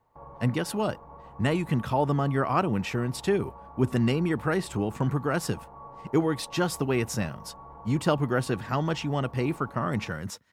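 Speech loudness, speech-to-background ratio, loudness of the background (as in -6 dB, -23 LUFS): -28.0 LUFS, 19.0 dB, -47.0 LUFS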